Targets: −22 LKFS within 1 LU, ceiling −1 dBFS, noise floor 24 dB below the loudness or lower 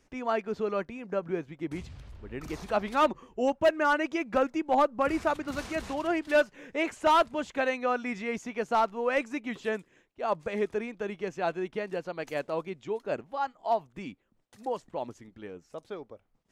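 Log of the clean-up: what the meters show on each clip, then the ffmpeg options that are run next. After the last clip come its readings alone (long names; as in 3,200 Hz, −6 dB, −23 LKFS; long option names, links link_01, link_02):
integrated loudness −30.0 LKFS; sample peak −15.5 dBFS; target loudness −22.0 LKFS
→ -af "volume=8dB"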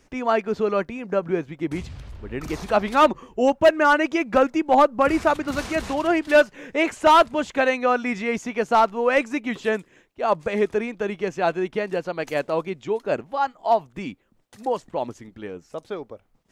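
integrated loudness −22.0 LKFS; sample peak −7.5 dBFS; background noise floor −61 dBFS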